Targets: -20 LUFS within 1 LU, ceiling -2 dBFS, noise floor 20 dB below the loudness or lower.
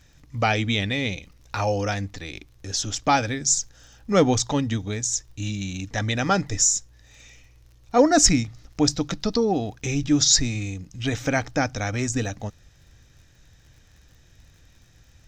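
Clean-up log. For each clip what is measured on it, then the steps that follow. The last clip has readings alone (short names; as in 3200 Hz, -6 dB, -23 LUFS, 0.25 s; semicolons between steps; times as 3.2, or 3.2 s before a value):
ticks 40/s; loudness -23.0 LUFS; peak -2.5 dBFS; loudness target -20.0 LUFS
-> de-click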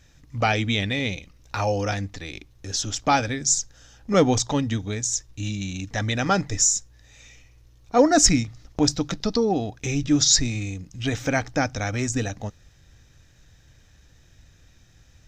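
ticks 0.065/s; loudness -23.0 LUFS; peak -2.5 dBFS; loudness target -20.0 LUFS
-> gain +3 dB; limiter -2 dBFS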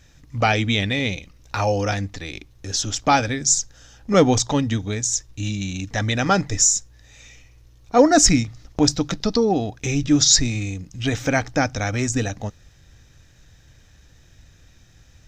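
loudness -20.5 LUFS; peak -2.0 dBFS; noise floor -52 dBFS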